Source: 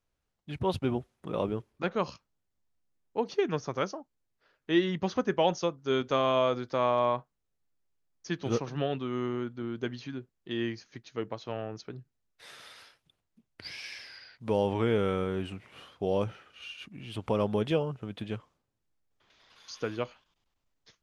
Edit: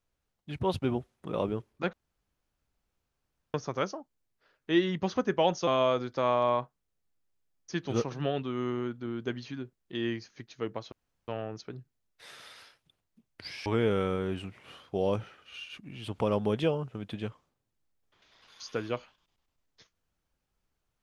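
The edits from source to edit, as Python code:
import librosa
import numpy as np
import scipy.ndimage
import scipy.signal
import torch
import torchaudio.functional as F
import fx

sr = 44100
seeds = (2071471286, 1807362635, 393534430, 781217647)

y = fx.edit(x, sr, fx.room_tone_fill(start_s=1.93, length_s=1.61),
    fx.cut(start_s=5.67, length_s=0.56),
    fx.insert_room_tone(at_s=11.48, length_s=0.36),
    fx.cut(start_s=13.86, length_s=0.88), tone=tone)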